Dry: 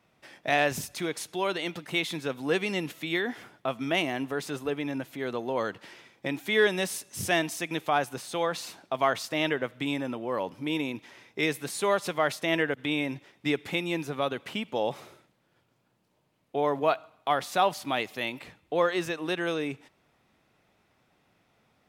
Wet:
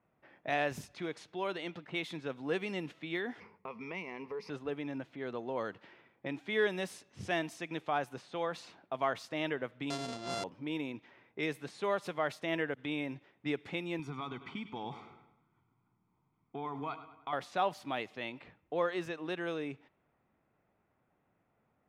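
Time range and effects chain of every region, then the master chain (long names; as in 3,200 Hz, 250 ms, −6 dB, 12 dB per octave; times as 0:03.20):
0:03.40–0:04.50: EQ curve with evenly spaced ripples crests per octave 0.85, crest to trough 16 dB + downward compressor 2.5 to 1, threshold −32 dBFS + one half of a high-frequency compander decoder only
0:09.90–0:10.44: samples sorted by size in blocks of 64 samples + low-pass filter 9,500 Hz 24 dB per octave + high shelf with overshoot 3,000 Hz +7.5 dB, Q 1.5
0:13.99–0:17.33: comb filter 0.9 ms, depth 87% + downward compressor 3 to 1, threshold −29 dBFS + repeating echo 101 ms, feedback 51%, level −13 dB
whole clip: low-pass that shuts in the quiet parts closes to 1,800 Hz, open at −25 dBFS; high-shelf EQ 4,700 Hz −10.5 dB; level −7 dB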